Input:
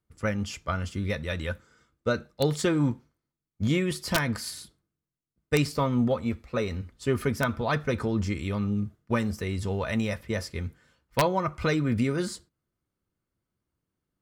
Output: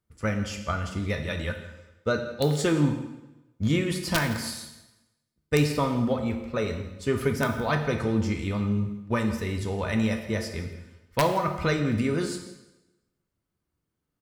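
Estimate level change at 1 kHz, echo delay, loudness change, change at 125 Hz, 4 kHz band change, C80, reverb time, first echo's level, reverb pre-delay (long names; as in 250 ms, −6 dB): +1.5 dB, 166 ms, +1.0 dB, +1.5 dB, +1.0 dB, 9.5 dB, 1.0 s, −18.0 dB, 5 ms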